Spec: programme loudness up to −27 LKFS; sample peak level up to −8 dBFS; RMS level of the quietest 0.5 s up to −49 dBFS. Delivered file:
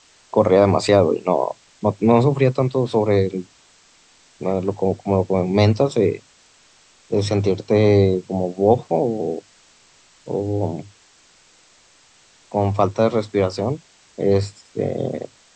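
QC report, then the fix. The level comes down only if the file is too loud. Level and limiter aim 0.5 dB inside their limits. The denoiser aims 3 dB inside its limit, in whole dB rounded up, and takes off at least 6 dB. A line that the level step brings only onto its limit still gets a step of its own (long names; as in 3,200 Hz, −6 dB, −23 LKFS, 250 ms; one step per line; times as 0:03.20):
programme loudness −19.5 LKFS: out of spec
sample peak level −2.5 dBFS: out of spec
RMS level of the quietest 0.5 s −54 dBFS: in spec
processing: level −8 dB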